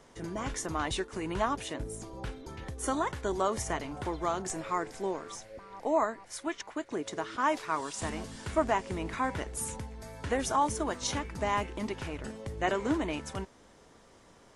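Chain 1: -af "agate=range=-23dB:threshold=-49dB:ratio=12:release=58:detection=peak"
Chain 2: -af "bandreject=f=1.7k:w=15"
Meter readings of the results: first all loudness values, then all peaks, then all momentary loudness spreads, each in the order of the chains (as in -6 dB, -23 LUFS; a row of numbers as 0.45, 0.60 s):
-33.5, -33.5 LUFS; -14.0, -14.0 dBFS; 12, 11 LU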